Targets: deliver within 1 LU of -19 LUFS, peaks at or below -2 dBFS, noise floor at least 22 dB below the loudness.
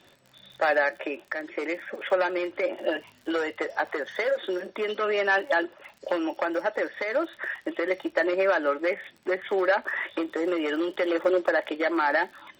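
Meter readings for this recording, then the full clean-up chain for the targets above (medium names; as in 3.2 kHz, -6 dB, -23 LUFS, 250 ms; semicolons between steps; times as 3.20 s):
tick rate 51 per s; loudness -27.0 LUFS; peak level -12.0 dBFS; loudness target -19.0 LUFS
-> de-click; trim +8 dB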